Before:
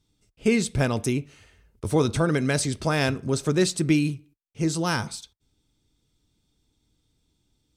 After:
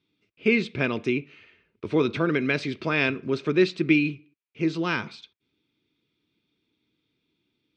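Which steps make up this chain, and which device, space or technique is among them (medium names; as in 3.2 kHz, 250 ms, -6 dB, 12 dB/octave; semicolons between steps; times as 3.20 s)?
kitchen radio (cabinet simulation 200–3900 Hz, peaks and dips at 360 Hz +4 dB, 560 Hz -4 dB, 790 Hz -9 dB, 2.4 kHz +9 dB)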